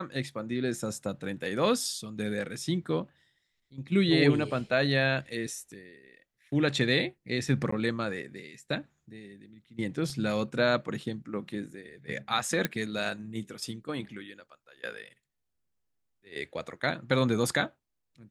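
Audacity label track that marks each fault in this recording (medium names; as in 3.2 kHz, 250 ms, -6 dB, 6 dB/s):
7.710000	7.720000	dropout 14 ms
10.100000	10.100000	dropout 2 ms
12.650000	12.650000	pop -12 dBFS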